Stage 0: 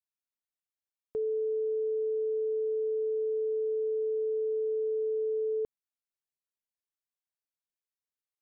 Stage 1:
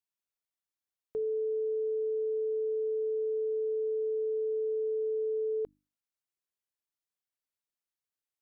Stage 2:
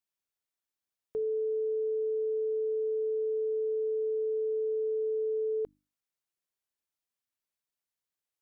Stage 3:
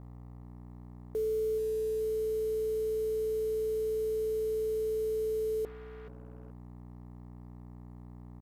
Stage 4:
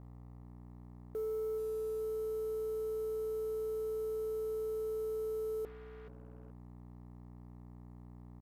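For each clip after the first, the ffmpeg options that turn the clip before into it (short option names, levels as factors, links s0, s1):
-af "bandreject=f=50:t=h:w=6,bandreject=f=100:t=h:w=6,bandreject=f=150:t=h:w=6,bandreject=f=200:t=h:w=6,bandreject=f=250:t=h:w=6,bandreject=f=300:t=h:w=6,volume=0.891"
-af "acontrast=30,volume=0.596"
-af "aeval=exprs='val(0)+0.00447*(sin(2*PI*60*n/s)+sin(2*PI*2*60*n/s)/2+sin(2*PI*3*60*n/s)/3+sin(2*PI*4*60*n/s)/4+sin(2*PI*5*60*n/s)/5)':c=same,aecho=1:1:429|858:0.15|0.0314,acrusher=bits=7:mix=0:aa=0.5"
-af "asoftclip=type=tanh:threshold=0.0422,volume=0.631"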